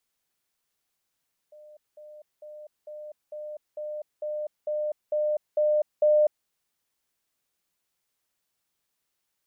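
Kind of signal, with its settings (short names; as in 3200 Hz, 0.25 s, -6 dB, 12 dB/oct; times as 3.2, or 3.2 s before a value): level ladder 603 Hz -46.5 dBFS, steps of 3 dB, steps 11, 0.25 s 0.20 s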